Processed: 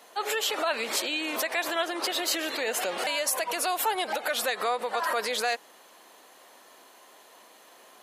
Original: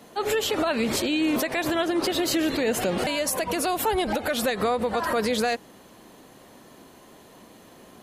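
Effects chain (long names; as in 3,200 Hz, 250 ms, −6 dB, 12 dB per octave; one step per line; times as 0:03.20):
high-pass filter 660 Hz 12 dB per octave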